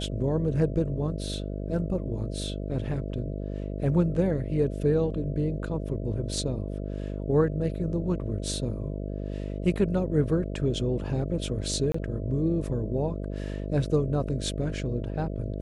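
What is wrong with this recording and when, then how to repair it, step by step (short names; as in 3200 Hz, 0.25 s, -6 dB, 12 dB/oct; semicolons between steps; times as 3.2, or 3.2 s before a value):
buzz 50 Hz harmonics 13 -33 dBFS
11.92–11.94 gap 24 ms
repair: de-hum 50 Hz, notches 13; interpolate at 11.92, 24 ms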